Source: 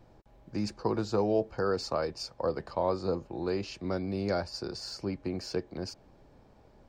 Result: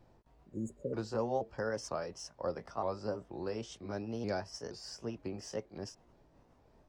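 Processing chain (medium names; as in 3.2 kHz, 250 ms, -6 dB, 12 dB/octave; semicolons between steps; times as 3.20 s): sawtooth pitch modulation +3.5 st, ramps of 471 ms; spectral replace 0.53–0.91 s, 600–6500 Hz before; trim -5.5 dB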